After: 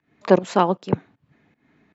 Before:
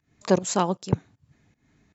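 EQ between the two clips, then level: three-band isolator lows -15 dB, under 170 Hz, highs -23 dB, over 3600 Hz; +6.0 dB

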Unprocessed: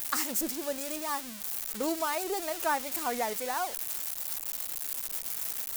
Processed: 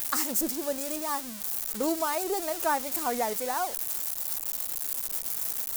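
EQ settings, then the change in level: dynamic EQ 2500 Hz, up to -5 dB, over -48 dBFS, Q 0.71; +3.5 dB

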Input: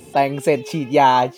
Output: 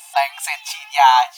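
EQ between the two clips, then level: brick-wall FIR high-pass 690 Hz; bell 3800 Hz +2 dB; high shelf 4800 Hz +7.5 dB; +2.5 dB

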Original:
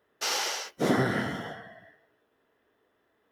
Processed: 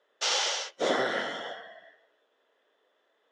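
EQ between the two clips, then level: speaker cabinet 460–7400 Hz, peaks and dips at 550 Hz +7 dB, 3400 Hz +8 dB, 6900 Hz +4 dB; 0.0 dB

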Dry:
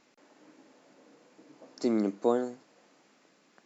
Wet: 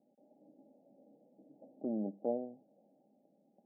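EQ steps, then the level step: HPF 110 Hz; rippled Chebyshev low-pass 830 Hz, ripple 9 dB; dynamic EQ 260 Hz, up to -7 dB, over -44 dBFS, Q 0.88; 0.0 dB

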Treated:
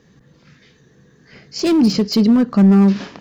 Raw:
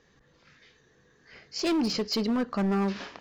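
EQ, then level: bell 170 Hz +13.5 dB 2.1 oct; high shelf 5600 Hz +6.5 dB; +4.0 dB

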